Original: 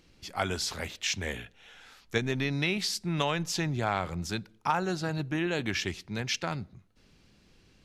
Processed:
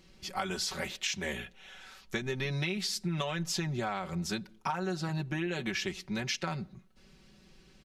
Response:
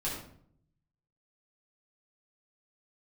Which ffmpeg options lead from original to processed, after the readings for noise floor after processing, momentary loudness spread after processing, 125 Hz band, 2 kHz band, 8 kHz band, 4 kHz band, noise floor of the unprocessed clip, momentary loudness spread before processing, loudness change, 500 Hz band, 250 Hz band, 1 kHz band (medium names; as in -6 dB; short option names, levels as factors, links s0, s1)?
-60 dBFS, 8 LU, -2.5 dB, -3.5 dB, -2.0 dB, -2.5 dB, -62 dBFS, 7 LU, -3.0 dB, -3.5 dB, -2.5 dB, -4.5 dB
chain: -af "aecho=1:1:5.3:0.77,acompressor=threshold=0.0316:ratio=6"